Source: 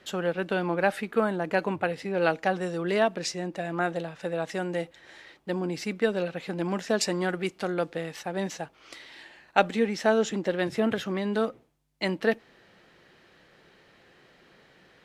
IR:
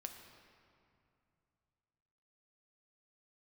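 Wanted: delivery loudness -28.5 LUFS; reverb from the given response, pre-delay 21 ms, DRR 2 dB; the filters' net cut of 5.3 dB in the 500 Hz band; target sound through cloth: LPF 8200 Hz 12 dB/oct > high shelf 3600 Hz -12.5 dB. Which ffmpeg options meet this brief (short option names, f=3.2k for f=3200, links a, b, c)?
-filter_complex "[0:a]equalizer=f=500:t=o:g=-6.5,asplit=2[a][b];[1:a]atrim=start_sample=2205,adelay=21[c];[b][c]afir=irnorm=-1:irlink=0,volume=1.5dB[d];[a][d]amix=inputs=2:normalize=0,lowpass=8.2k,highshelf=f=3.6k:g=-12.5,volume=1.5dB"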